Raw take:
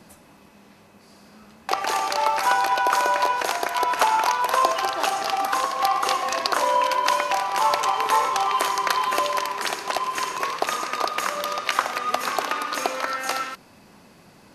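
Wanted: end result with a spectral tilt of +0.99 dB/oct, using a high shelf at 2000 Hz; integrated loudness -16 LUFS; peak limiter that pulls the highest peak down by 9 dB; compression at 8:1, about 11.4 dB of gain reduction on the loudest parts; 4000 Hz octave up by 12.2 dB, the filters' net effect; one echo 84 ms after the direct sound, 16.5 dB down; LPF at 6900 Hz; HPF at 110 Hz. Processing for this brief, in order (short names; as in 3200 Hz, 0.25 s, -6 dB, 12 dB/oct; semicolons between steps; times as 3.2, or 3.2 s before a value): HPF 110 Hz; LPF 6900 Hz; high shelf 2000 Hz +7.5 dB; bell 4000 Hz +8.5 dB; compressor 8:1, threshold -22 dBFS; limiter -12 dBFS; echo 84 ms -16.5 dB; gain +10 dB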